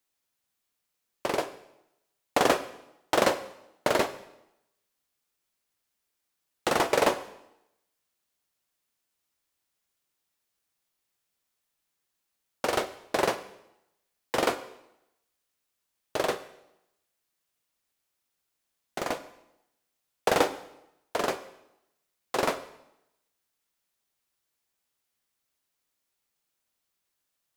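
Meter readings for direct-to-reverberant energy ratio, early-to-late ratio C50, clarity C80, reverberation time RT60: 10.5 dB, 13.5 dB, 16.0 dB, 0.85 s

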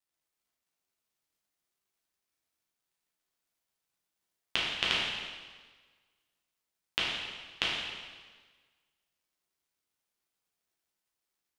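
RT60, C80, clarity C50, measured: 1.4 s, 2.0 dB, -0.5 dB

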